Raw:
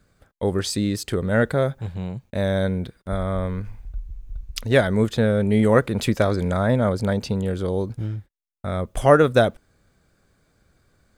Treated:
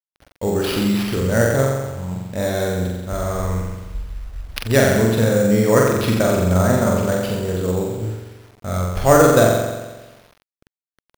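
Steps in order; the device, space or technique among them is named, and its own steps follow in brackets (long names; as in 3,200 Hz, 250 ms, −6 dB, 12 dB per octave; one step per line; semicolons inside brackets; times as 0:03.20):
0:01.62–0:02.11: octave-band graphic EQ 125/500/1,000/2,000/4,000 Hz −8/−12/+8/−10/−11 dB
flutter between parallel walls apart 7.6 metres, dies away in 1.2 s
early 8-bit sampler (sample-rate reduction 7,600 Hz, jitter 0%; bit reduction 8 bits)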